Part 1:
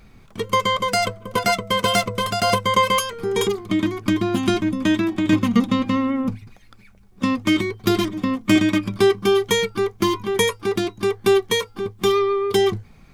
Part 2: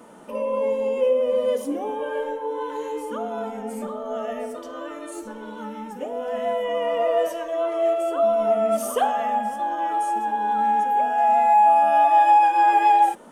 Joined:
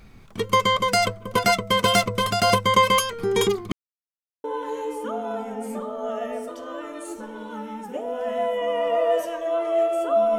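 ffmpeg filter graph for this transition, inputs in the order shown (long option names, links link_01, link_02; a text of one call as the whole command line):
ffmpeg -i cue0.wav -i cue1.wav -filter_complex "[0:a]apad=whole_dur=10.38,atrim=end=10.38,asplit=2[link_01][link_02];[link_01]atrim=end=3.72,asetpts=PTS-STARTPTS,afade=type=out:start_time=3.716:duration=0.004:curve=hsin[link_03];[link_02]atrim=start=3.72:end=4.44,asetpts=PTS-STARTPTS,volume=0[link_04];[1:a]atrim=start=2.51:end=8.45,asetpts=PTS-STARTPTS,afade=type=in:duration=0.004:curve=hsin[link_05];[link_03][link_04][link_05]concat=n=3:v=0:a=1" out.wav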